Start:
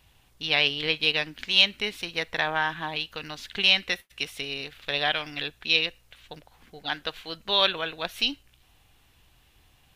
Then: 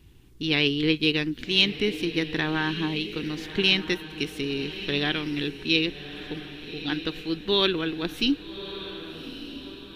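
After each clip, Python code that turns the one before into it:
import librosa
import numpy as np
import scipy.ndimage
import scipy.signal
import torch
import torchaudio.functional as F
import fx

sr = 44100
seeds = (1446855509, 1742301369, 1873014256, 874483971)

y = fx.low_shelf_res(x, sr, hz=470.0, db=10.0, q=3.0)
y = fx.echo_diffused(y, sr, ms=1198, feedback_pct=44, wet_db=-12)
y = y * librosa.db_to_amplitude(-1.5)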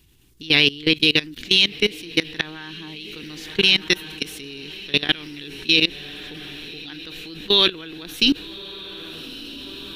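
y = fx.high_shelf(x, sr, hz=2700.0, db=12.0)
y = fx.level_steps(y, sr, step_db=21)
y = y * librosa.db_to_amplitude(6.0)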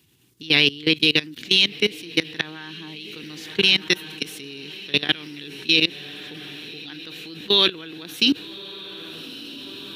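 y = scipy.signal.sosfilt(scipy.signal.butter(4, 100.0, 'highpass', fs=sr, output='sos'), x)
y = y * librosa.db_to_amplitude(-1.0)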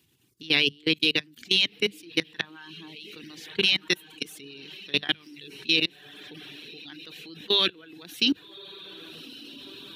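y = fx.hum_notches(x, sr, base_hz=50, count=4)
y = fx.dereverb_blind(y, sr, rt60_s=0.81)
y = y * librosa.db_to_amplitude(-4.5)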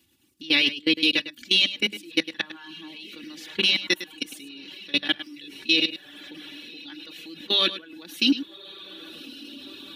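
y = x + 0.7 * np.pad(x, (int(3.5 * sr / 1000.0), 0))[:len(x)]
y = y + 10.0 ** (-13.5 / 20.0) * np.pad(y, (int(104 * sr / 1000.0), 0))[:len(y)]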